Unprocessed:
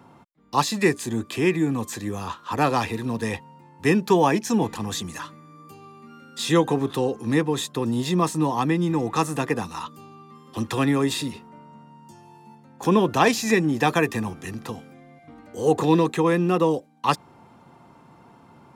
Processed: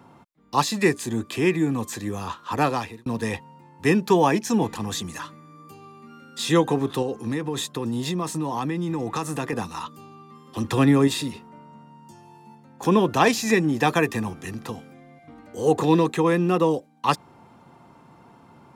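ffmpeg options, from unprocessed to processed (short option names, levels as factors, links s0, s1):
-filter_complex "[0:a]asettb=1/sr,asplit=3[s0][s1][s2];[s0]atrim=end=7.024[s3];[s1]atrim=start=7.02:end=9.53,asetpts=PTS-STARTPTS,afade=t=in:d=0.004:c=qsin,afade=t=out:st=2.506:d=0.004:c=qsin,acompressor=threshold=0.0794:ratio=6:attack=3.2:release=140:knee=1:detection=peak[s4];[s2]atrim=start=9.526[s5];[s3][s4]acrossfade=d=0.004:c1=hsin:c2=qsin[s6];[s6][s5]acrossfade=d=0.004:c1=qsin:c2=hsin,asettb=1/sr,asplit=3[s7][s8][s9];[s7]atrim=end=10.644[s10];[s8]atrim=start=10.64:end=11.08,asetpts=PTS-STARTPTS,afade=t=in:d=0.004:c=qsin,afade=t=out:st=0.436:d=0.004:c=qsin,lowshelf=f=480:g=5.5[s11];[s9]atrim=start=11.076[s12];[s10][s11]acrossfade=d=0.004:c1=hsin:c2=qsin[s13];[s13][s12]acrossfade=d=0.004:c1=qsin:c2=hsin,asplit=2[s14][s15];[s14]atrim=end=3.06,asetpts=PTS-STARTPTS,afade=t=out:st=2.61:d=0.45[s16];[s15]atrim=start=3.06,asetpts=PTS-STARTPTS,afade=t=in:d=0.004:c=hsin[s17];[s16][s17]concat=n=2:v=0:a=1"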